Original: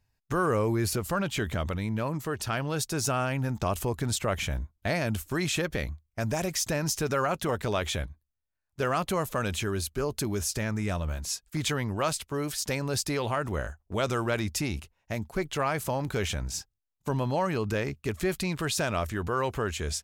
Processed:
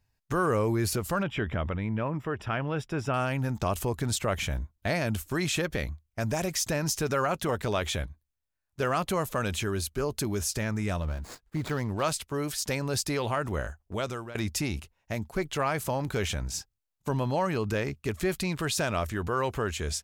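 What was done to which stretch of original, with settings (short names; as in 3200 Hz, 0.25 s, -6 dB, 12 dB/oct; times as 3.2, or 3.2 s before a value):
1.23–3.14 polynomial smoothing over 25 samples
11.02–12.03 median filter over 15 samples
13.81–14.35 fade out linear, to -17.5 dB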